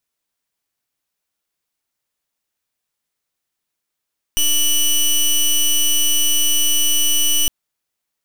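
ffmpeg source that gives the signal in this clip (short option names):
-f lavfi -i "aevalsrc='0.178*(2*lt(mod(2960*t,1),0.16)-1)':d=3.11:s=44100"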